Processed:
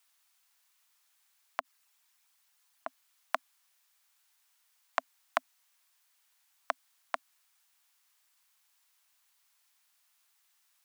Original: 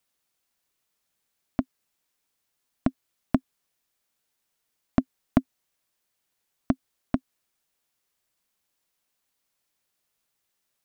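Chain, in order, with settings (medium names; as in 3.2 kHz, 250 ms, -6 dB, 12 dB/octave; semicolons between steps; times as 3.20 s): 1.60–2.87 s: resonances exaggerated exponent 1.5; high-pass 830 Hz 24 dB/octave; trim +6.5 dB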